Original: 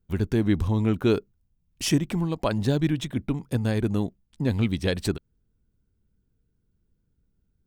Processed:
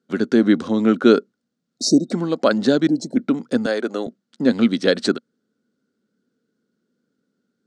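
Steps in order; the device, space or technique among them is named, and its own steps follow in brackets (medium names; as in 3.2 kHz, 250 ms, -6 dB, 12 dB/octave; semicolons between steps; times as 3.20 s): television speaker (cabinet simulation 220–7500 Hz, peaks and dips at 240 Hz +6 dB, 530 Hz +5 dB, 930 Hz -8 dB, 1.4 kHz +8 dB, 2.5 kHz -6 dB, 4.3 kHz +4 dB); 1.75–2.09 s: spectral replace 730–3700 Hz before; 2.87–3.16 s: time-frequency box 940–4000 Hz -29 dB; 3.66–4.07 s: Chebyshev high-pass 490 Hz, order 2; trim +7.5 dB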